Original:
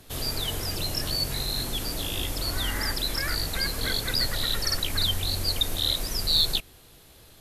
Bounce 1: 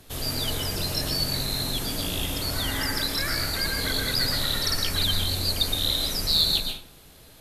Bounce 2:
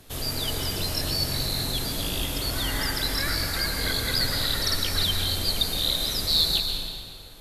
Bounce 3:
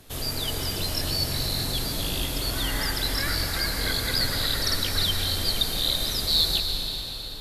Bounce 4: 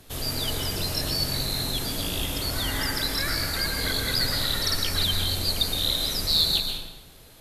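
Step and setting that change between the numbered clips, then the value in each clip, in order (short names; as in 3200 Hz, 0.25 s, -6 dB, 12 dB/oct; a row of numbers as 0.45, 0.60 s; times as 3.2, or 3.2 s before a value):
plate-style reverb, RT60: 0.5, 2.3, 5.1, 1.1 s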